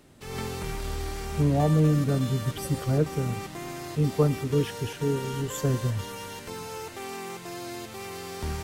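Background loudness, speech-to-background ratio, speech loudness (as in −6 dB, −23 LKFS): −36.5 LKFS, 9.5 dB, −27.0 LKFS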